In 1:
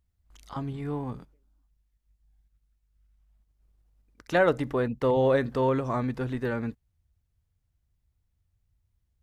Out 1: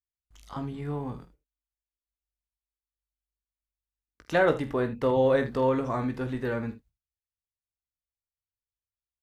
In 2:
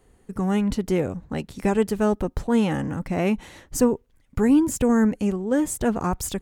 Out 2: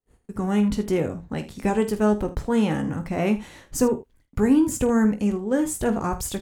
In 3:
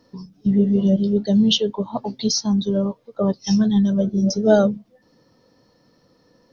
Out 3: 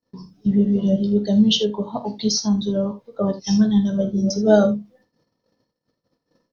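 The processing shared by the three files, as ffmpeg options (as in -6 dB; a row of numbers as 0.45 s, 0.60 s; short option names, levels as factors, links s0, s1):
-af "agate=range=0.0282:threshold=0.00178:ratio=16:detection=peak,aecho=1:1:19|48|77:0.335|0.224|0.178,volume=0.891"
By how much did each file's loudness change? 0.0 LU, 0.0 LU, -0.5 LU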